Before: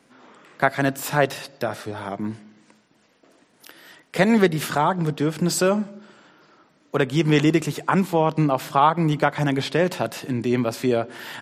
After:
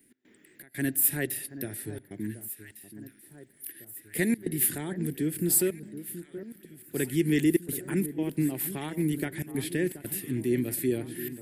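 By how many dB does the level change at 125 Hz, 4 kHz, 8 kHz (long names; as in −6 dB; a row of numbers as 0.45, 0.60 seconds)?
−9.0, −12.0, +3.5 decibels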